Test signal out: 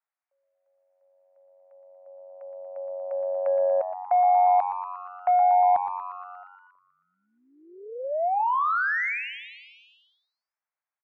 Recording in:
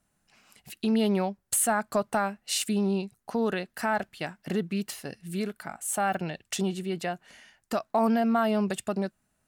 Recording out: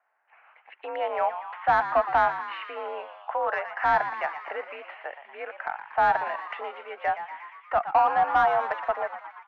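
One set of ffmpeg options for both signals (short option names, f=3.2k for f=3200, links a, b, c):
-filter_complex "[0:a]highpass=f=590:t=q:w=0.5412,highpass=f=590:t=q:w=1.307,lowpass=f=2.3k:t=q:w=0.5176,lowpass=f=2.3k:t=q:w=0.7071,lowpass=f=2.3k:t=q:w=1.932,afreqshift=53,asplit=2[a][b];[b]highpass=f=720:p=1,volume=12dB,asoftclip=type=tanh:threshold=-15.5dB[c];[a][c]amix=inputs=2:normalize=0,lowpass=f=1k:p=1,volume=-6dB,asplit=9[d][e][f][g][h][i][j][k][l];[e]adelay=118,afreqshift=93,volume=-11dB[m];[f]adelay=236,afreqshift=186,volume=-15dB[n];[g]adelay=354,afreqshift=279,volume=-19dB[o];[h]adelay=472,afreqshift=372,volume=-23dB[p];[i]adelay=590,afreqshift=465,volume=-27.1dB[q];[j]adelay=708,afreqshift=558,volume=-31.1dB[r];[k]adelay=826,afreqshift=651,volume=-35.1dB[s];[l]adelay=944,afreqshift=744,volume=-39.1dB[t];[d][m][n][o][p][q][r][s][t]amix=inputs=9:normalize=0,volume=6dB"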